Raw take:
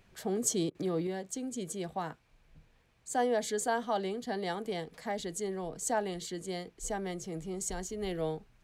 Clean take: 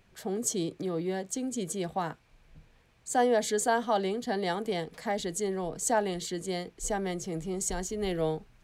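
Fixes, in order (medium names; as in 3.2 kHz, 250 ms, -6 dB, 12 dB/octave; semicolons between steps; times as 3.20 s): interpolate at 0.70 s, 47 ms; gain correction +4.5 dB, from 1.07 s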